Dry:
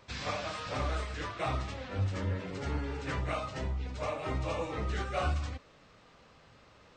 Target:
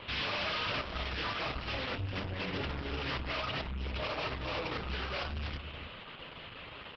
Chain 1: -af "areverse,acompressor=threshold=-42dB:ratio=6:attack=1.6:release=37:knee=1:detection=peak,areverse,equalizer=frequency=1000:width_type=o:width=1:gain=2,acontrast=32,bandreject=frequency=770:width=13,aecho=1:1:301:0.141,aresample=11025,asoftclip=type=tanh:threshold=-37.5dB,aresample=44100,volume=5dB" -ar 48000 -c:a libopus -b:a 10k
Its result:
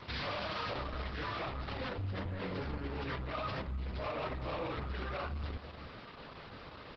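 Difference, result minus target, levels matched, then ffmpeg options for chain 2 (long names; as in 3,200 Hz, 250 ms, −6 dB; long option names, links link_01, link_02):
downward compressor: peak gain reduction +5.5 dB; 4,000 Hz band −5.0 dB
-af "areverse,acompressor=threshold=-35.5dB:ratio=6:attack=1.6:release=37:knee=1:detection=peak,areverse,lowpass=frequency=3000:width_type=q:width=4.3,equalizer=frequency=1000:width_type=o:width=1:gain=2,acontrast=32,bandreject=frequency=770:width=13,aecho=1:1:301:0.141,aresample=11025,asoftclip=type=tanh:threshold=-37.5dB,aresample=44100,volume=5dB" -ar 48000 -c:a libopus -b:a 10k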